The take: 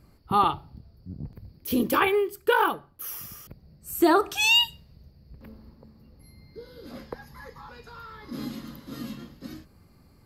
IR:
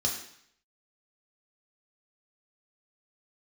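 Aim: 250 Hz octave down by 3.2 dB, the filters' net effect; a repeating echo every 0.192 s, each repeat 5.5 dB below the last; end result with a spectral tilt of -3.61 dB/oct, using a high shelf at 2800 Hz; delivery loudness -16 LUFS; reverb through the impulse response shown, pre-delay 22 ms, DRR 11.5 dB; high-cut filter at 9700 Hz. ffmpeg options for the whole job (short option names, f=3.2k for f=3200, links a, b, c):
-filter_complex "[0:a]lowpass=9.7k,equalizer=f=250:t=o:g=-4.5,highshelf=f=2.8k:g=-4.5,aecho=1:1:192|384|576|768|960|1152|1344:0.531|0.281|0.149|0.079|0.0419|0.0222|0.0118,asplit=2[a][b];[1:a]atrim=start_sample=2205,adelay=22[c];[b][c]afir=irnorm=-1:irlink=0,volume=-18dB[d];[a][d]amix=inputs=2:normalize=0,volume=8.5dB"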